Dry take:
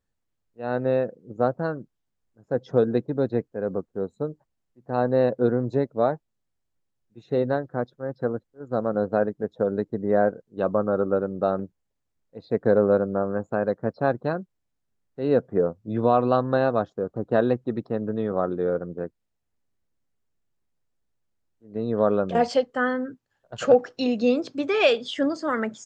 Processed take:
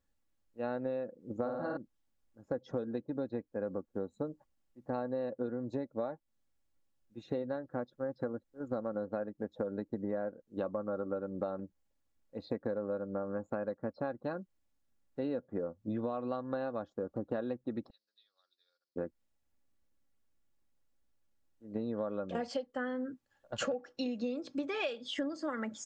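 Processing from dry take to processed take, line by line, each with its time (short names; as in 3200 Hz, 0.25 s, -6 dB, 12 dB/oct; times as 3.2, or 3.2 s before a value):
1.37–1.77 flutter echo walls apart 9 m, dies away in 0.97 s
17.9–18.96 Butterworth band-pass 4600 Hz, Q 3.9
whole clip: comb 3.6 ms, depth 44%; compressor 12:1, threshold -31 dBFS; gain -1.5 dB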